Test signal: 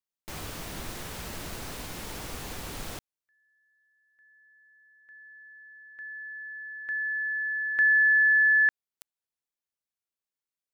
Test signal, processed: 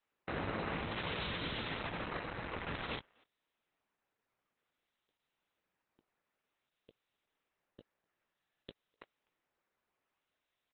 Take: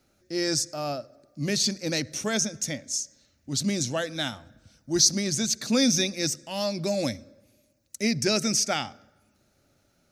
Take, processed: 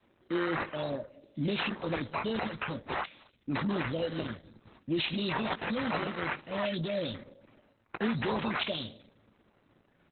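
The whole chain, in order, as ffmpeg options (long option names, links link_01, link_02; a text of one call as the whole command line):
ffmpeg -i in.wav -filter_complex "[0:a]asuperstop=centerf=1400:order=12:qfactor=0.5,equalizer=frequency=410:width=3.9:gain=-2,acrusher=samples=9:mix=1:aa=0.000001:lfo=1:lforange=9:lforate=0.54,asplit=2[link_01][link_02];[link_02]adelay=18,volume=-10.5dB[link_03];[link_01][link_03]amix=inputs=2:normalize=0,acompressor=threshold=-28dB:ratio=20:attack=0.2:release=56:knee=6:detection=rms,adynamicequalizer=threshold=0.00355:dfrequency=290:dqfactor=0.87:tfrequency=290:tqfactor=0.87:attack=5:release=100:ratio=0.375:range=3:mode=cutabove:tftype=bell,aresample=11025,aresample=44100,highpass=frequency=190:poles=1,asplit=2[link_04][link_05];[link_05]adelay=250,highpass=300,lowpass=3400,asoftclip=type=hard:threshold=-32.5dB,volume=-28dB[link_06];[link_04][link_06]amix=inputs=2:normalize=0,volume=7dB" -ar 48000 -c:a libopus -b:a 8k out.opus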